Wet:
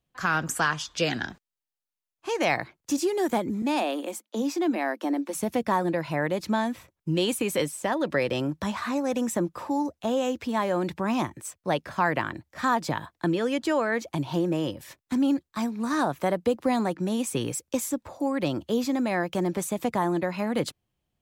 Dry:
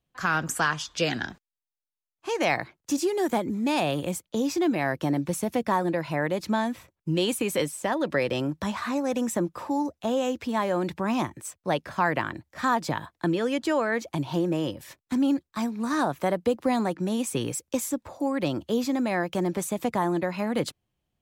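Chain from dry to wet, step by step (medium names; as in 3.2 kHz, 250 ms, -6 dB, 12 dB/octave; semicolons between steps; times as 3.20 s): 3.62–5.35 s: rippled Chebyshev high-pass 210 Hz, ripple 3 dB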